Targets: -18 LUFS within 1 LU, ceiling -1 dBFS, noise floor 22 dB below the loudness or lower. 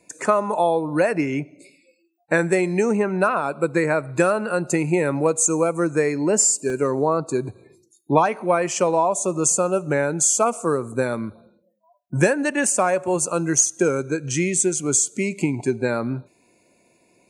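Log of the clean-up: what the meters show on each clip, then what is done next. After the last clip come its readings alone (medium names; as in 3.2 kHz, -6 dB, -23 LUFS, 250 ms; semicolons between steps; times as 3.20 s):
dropouts 1; longest dropout 1.9 ms; loudness -21.0 LUFS; peak level -2.5 dBFS; loudness target -18.0 LUFS
-> interpolate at 6.70 s, 1.9 ms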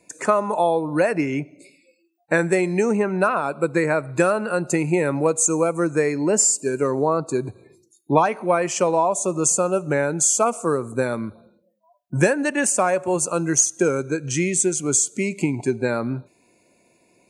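dropouts 0; loudness -21.0 LUFS; peak level -2.5 dBFS; loudness target -18.0 LUFS
-> trim +3 dB; peak limiter -1 dBFS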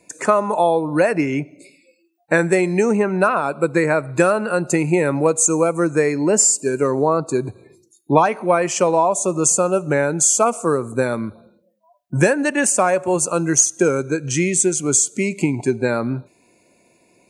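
loudness -18.0 LUFS; peak level -1.0 dBFS; noise floor -60 dBFS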